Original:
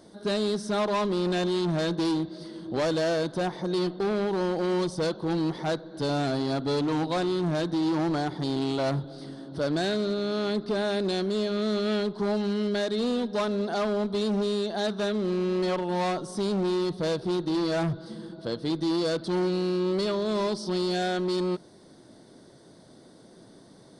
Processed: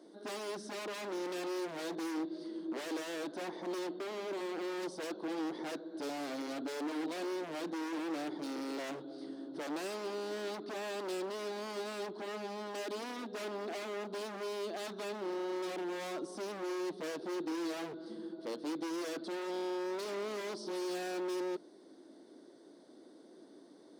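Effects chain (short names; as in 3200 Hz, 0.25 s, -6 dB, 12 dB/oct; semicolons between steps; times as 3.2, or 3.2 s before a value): high shelf 8000 Hz -5.5 dB; wavefolder -28 dBFS; ladder high-pass 260 Hz, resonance 50%; gain +1 dB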